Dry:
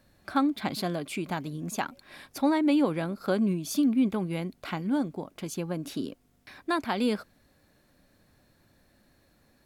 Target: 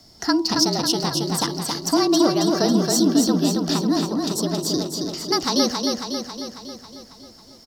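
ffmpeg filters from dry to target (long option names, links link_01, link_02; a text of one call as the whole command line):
ffmpeg -i in.wav -filter_complex "[0:a]highpass=51,aemphasis=mode=reproduction:type=75kf,afreqshift=-33,highshelf=frequency=2700:width_type=q:width=3:gain=12.5,asplit=2[link_01][link_02];[link_02]acompressor=threshold=-38dB:ratio=6,volume=-1dB[link_03];[link_01][link_03]amix=inputs=2:normalize=0,asetrate=55566,aresample=44100,bandreject=frequency=81.12:width_type=h:width=4,bandreject=frequency=162.24:width_type=h:width=4,bandreject=frequency=243.36:width_type=h:width=4,bandreject=frequency=324.48:width_type=h:width=4,bandreject=frequency=405.6:width_type=h:width=4,bandreject=frequency=486.72:width_type=h:width=4,bandreject=frequency=567.84:width_type=h:width=4,bandreject=frequency=648.96:width_type=h:width=4,bandreject=frequency=730.08:width_type=h:width=4,bandreject=frequency=811.2:width_type=h:width=4,bandreject=frequency=892.32:width_type=h:width=4,bandreject=frequency=973.44:width_type=h:width=4,bandreject=frequency=1054.56:width_type=h:width=4,bandreject=frequency=1135.68:width_type=h:width=4,asplit=2[link_04][link_05];[link_05]aecho=0:1:273|546|819|1092|1365|1638|1911|2184|2457:0.631|0.379|0.227|0.136|0.0818|0.0491|0.0294|0.0177|0.0106[link_06];[link_04][link_06]amix=inputs=2:normalize=0,volume=5dB" out.wav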